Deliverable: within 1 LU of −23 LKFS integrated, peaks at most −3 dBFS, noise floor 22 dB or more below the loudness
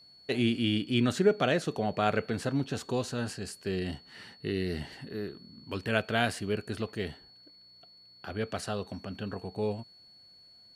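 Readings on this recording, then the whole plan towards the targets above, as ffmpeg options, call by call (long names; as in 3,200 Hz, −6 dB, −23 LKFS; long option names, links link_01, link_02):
interfering tone 4,400 Hz; level of the tone −54 dBFS; integrated loudness −32.0 LKFS; sample peak −10.5 dBFS; target loudness −23.0 LKFS
→ -af "bandreject=frequency=4400:width=30"
-af "volume=9dB,alimiter=limit=-3dB:level=0:latency=1"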